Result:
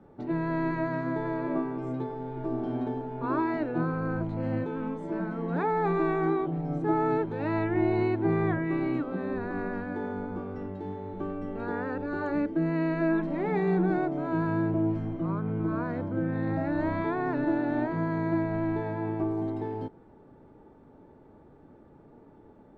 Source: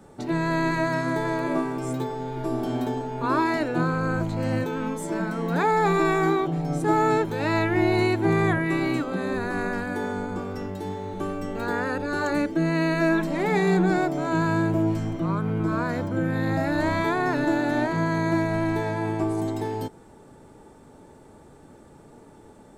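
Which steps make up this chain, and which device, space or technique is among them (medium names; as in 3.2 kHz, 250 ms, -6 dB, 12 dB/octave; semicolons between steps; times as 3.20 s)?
phone in a pocket (low-pass 3.5 kHz 12 dB/octave; peaking EQ 300 Hz +2.5 dB 0.64 oct; treble shelf 2.4 kHz -12 dB); trim -5 dB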